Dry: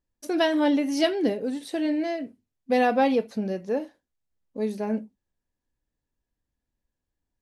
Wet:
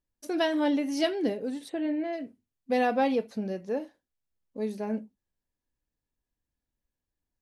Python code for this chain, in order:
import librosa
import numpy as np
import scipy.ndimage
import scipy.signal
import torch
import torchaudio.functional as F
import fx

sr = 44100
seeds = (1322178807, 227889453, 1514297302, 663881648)

y = fx.moving_average(x, sr, points=8, at=(1.68, 2.12), fade=0.02)
y = y * 10.0 ** (-4.0 / 20.0)